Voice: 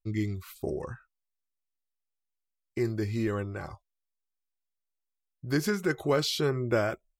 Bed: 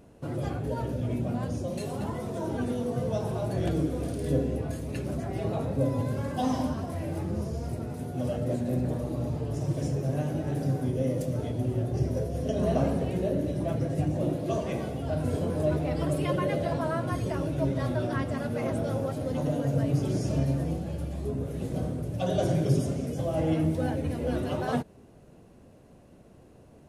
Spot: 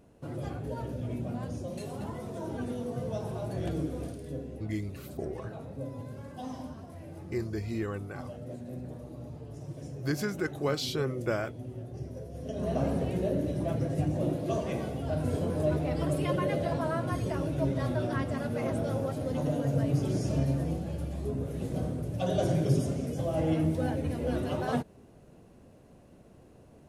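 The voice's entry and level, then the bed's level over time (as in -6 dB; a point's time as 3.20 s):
4.55 s, -4.0 dB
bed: 4.04 s -5 dB
4.26 s -12 dB
12.20 s -12 dB
12.97 s -1.5 dB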